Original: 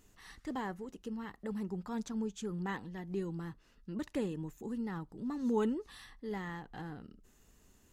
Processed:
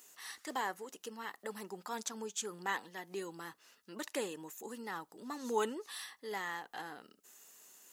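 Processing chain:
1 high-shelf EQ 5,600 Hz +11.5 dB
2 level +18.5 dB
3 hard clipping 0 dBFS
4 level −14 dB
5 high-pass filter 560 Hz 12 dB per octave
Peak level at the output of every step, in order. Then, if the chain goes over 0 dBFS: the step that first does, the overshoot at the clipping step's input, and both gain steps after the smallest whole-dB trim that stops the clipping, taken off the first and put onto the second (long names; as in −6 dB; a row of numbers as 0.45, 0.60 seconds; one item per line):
−20.5, −2.0, −2.0, −16.0, −21.0 dBFS
no step passes full scale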